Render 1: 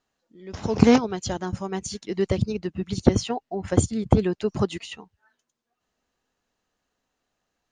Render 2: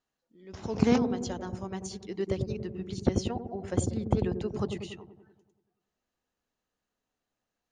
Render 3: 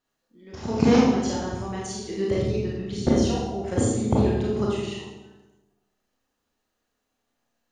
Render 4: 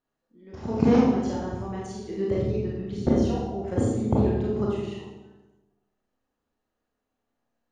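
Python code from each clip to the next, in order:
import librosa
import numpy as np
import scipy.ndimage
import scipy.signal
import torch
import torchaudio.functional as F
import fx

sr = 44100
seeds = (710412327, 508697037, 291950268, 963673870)

y1 = fx.echo_wet_lowpass(x, sr, ms=95, feedback_pct=59, hz=600.0, wet_db=-5.0)
y1 = y1 * 10.0 ** (-8.5 / 20.0)
y2 = fx.rev_schroeder(y1, sr, rt60_s=0.8, comb_ms=27, drr_db=-4.5)
y2 = y2 * 10.0 ** (2.0 / 20.0)
y3 = fx.high_shelf(y2, sr, hz=2200.0, db=-12.0)
y3 = y3 * 10.0 ** (-1.0 / 20.0)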